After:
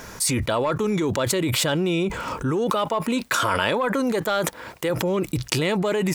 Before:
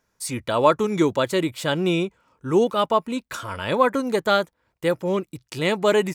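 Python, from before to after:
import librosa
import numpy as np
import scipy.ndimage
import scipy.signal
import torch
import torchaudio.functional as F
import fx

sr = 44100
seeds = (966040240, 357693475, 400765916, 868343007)

y = fx.highpass(x, sr, hz=230.0, slope=6, at=(2.71, 4.9))
y = 10.0 ** (-8.0 / 20.0) * np.tanh(y / 10.0 ** (-8.0 / 20.0))
y = fx.env_flatten(y, sr, amount_pct=100)
y = y * librosa.db_to_amplitude(-7.5)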